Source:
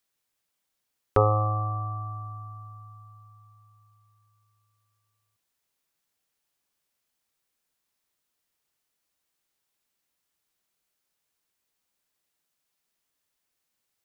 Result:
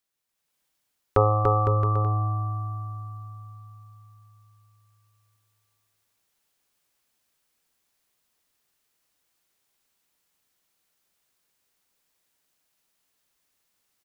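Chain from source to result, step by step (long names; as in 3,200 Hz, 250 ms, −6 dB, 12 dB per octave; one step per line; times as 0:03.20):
bouncing-ball delay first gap 290 ms, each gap 0.75×, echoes 5
automatic gain control gain up to 7 dB
level −3.5 dB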